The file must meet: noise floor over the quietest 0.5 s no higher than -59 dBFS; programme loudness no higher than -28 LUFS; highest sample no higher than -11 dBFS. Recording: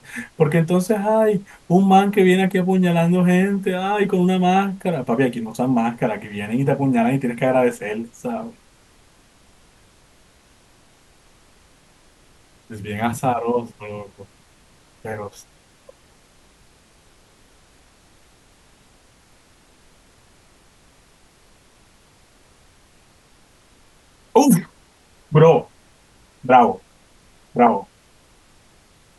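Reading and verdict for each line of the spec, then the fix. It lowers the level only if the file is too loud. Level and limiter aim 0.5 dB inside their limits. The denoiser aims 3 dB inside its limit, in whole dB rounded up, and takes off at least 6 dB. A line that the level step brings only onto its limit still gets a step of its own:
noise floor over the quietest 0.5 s -53 dBFS: fail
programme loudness -18.5 LUFS: fail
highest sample -2.0 dBFS: fail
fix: trim -10 dB

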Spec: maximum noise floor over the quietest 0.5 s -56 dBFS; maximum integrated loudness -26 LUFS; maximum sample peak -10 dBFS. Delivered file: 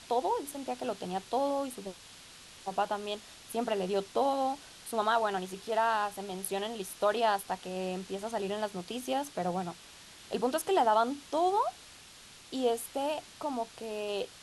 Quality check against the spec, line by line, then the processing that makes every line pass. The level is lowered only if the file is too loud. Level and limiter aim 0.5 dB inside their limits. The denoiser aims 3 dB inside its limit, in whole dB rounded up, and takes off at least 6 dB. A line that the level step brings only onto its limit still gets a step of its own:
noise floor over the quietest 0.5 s -53 dBFS: fail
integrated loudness -32.5 LUFS: pass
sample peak -16.0 dBFS: pass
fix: noise reduction 6 dB, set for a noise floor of -53 dBFS

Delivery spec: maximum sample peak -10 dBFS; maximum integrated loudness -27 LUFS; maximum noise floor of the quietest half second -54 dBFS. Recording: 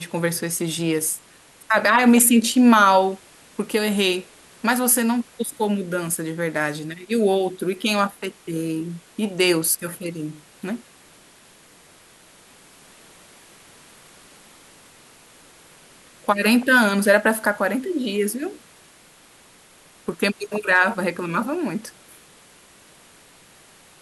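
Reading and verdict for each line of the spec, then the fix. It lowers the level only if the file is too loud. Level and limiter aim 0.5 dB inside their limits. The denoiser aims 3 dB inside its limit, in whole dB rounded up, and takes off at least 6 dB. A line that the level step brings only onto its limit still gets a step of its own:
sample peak -3.0 dBFS: fail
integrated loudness -20.5 LUFS: fail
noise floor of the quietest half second -51 dBFS: fail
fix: trim -7 dB; peak limiter -10.5 dBFS

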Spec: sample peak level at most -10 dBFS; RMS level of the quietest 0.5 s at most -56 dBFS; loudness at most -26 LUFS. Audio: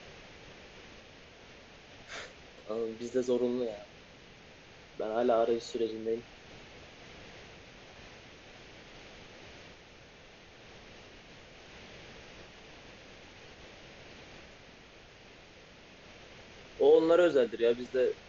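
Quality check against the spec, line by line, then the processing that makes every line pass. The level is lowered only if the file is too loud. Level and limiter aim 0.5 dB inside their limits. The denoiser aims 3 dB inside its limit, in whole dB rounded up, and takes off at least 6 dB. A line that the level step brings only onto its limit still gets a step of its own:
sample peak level -14.0 dBFS: pass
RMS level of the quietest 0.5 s -54 dBFS: fail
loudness -30.0 LUFS: pass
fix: noise reduction 6 dB, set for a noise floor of -54 dBFS

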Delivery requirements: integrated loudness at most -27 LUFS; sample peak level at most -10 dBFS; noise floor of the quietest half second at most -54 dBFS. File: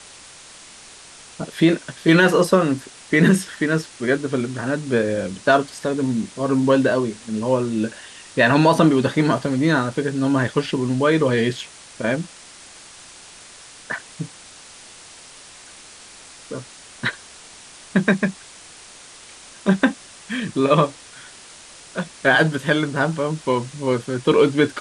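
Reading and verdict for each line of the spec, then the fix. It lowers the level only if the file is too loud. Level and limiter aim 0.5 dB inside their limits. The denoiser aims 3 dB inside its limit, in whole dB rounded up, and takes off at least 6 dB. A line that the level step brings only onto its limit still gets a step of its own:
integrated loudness -20.0 LUFS: fail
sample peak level -3.5 dBFS: fail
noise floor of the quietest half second -43 dBFS: fail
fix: noise reduction 7 dB, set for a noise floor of -43 dBFS; trim -7.5 dB

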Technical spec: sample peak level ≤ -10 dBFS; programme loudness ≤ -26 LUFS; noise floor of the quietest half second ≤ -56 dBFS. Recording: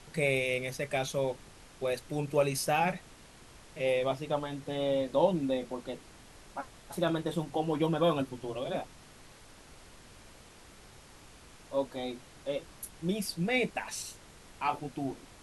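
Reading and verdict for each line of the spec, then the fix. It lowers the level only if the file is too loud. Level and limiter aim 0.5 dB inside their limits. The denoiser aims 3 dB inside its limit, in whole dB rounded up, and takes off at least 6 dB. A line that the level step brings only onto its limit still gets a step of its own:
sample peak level -14.0 dBFS: pass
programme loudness -32.5 LUFS: pass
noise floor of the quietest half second -54 dBFS: fail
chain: noise reduction 6 dB, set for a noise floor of -54 dBFS

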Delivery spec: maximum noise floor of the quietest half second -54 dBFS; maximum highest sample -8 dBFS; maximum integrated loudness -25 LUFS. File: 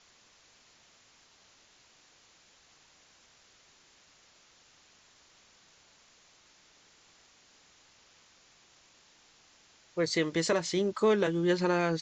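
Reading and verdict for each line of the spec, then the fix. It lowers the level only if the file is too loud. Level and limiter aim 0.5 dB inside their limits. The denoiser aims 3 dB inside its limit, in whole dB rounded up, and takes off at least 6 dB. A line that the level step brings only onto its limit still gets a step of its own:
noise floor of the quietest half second -62 dBFS: pass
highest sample -16.5 dBFS: pass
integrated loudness -28.5 LUFS: pass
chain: none needed

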